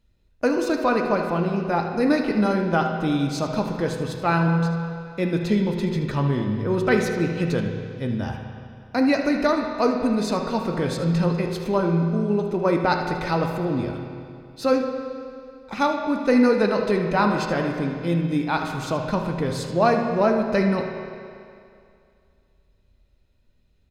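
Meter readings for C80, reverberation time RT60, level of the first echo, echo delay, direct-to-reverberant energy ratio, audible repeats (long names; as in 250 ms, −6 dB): 5.5 dB, 2.4 s, −12.5 dB, 77 ms, 2.5 dB, 1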